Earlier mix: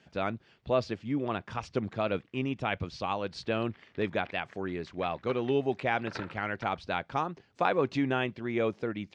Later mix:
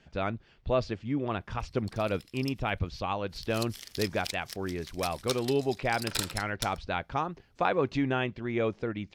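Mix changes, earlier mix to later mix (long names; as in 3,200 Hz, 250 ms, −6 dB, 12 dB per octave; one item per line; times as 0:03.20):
background: remove low-pass filter 2,000 Hz 24 dB per octave
master: remove high-pass filter 120 Hz 12 dB per octave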